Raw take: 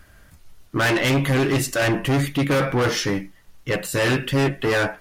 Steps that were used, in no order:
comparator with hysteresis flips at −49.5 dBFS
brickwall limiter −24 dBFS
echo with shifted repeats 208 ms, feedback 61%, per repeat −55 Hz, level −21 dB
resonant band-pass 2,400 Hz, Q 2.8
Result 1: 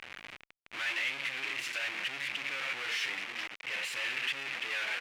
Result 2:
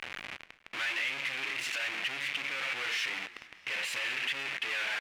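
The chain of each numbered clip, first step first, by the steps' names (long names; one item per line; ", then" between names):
echo with shifted repeats, then comparator with hysteresis, then brickwall limiter, then resonant band-pass
comparator with hysteresis, then resonant band-pass, then echo with shifted repeats, then brickwall limiter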